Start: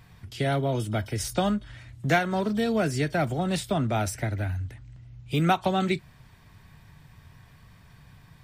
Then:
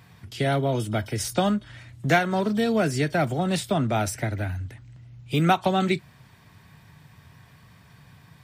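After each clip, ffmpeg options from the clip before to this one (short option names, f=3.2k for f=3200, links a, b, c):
-af "highpass=95,volume=2.5dB"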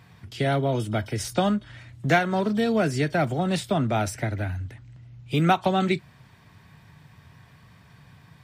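-af "highshelf=f=7.6k:g=-6.5"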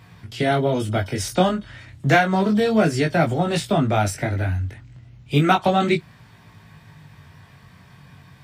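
-af "flanger=delay=18:depth=4.1:speed=0.31,volume=7.5dB"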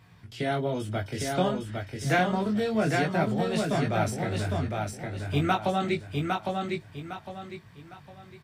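-af "aecho=1:1:807|1614|2421|3228:0.668|0.221|0.0728|0.024,volume=-8.5dB"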